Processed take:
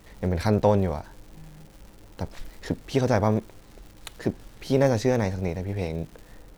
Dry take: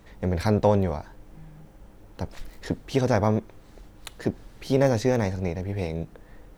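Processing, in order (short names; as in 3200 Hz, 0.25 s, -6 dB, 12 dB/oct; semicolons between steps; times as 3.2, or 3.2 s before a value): crackle 270/s -41 dBFS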